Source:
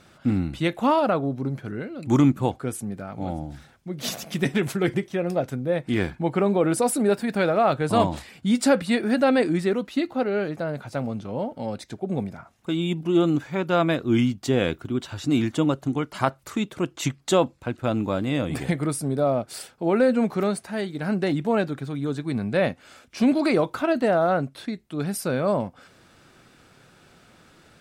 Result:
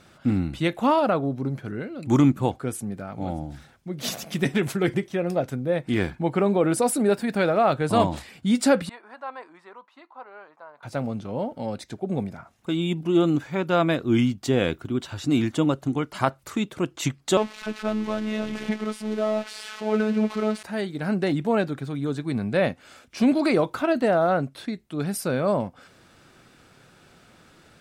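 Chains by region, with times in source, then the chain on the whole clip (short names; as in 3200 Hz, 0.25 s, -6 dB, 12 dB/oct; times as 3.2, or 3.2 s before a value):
8.89–10.83 band-pass 1000 Hz, Q 6.2 + tilt +2.5 dB/oct
17.37–20.63 switching spikes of -14.5 dBFS + LPF 2600 Hz + robotiser 215 Hz
whole clip: dry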